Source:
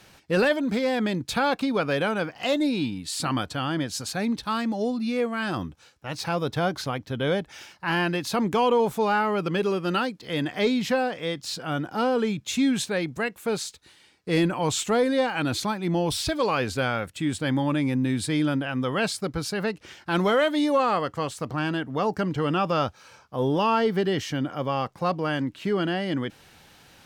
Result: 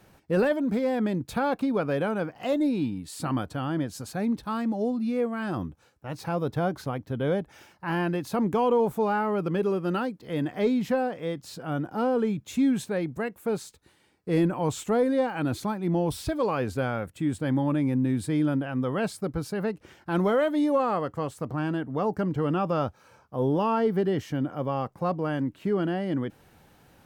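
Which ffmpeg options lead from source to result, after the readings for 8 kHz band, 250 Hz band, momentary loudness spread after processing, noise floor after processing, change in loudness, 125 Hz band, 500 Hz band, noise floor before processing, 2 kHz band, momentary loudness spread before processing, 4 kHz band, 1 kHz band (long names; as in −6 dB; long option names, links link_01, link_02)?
−9.0 dB, −0.5 dB, 8 LU, −60 dBFS, −2.0 dB, 0.0 dB, −1.0 dB, −56 dBFS, −7.0 dB, 7 LU, −12.0 dB, −3.5 dB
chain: -af "equalizer=frequency=4200:width=0.4:gain=-12.5"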